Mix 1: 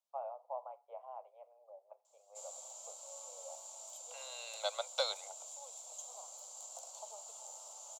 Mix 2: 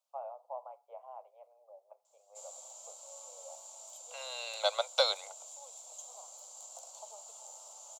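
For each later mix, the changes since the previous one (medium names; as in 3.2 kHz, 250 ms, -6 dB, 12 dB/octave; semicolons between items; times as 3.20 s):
second voice +7.0 dB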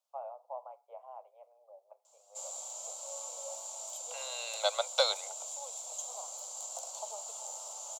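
background +7.5 dB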